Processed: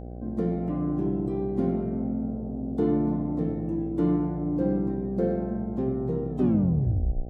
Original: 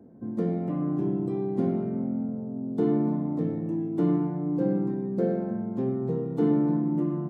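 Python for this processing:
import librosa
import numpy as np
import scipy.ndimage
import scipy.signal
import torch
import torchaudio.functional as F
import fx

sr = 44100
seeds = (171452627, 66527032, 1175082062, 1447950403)

y = fx.tape_stop_end(x, sr, length_s=1.02)
y = fx.dmg_buzz(y, sr, base_hz=60.0, harmonics=13, level_db=-38.0, tilt_db=-5, odd_only=False)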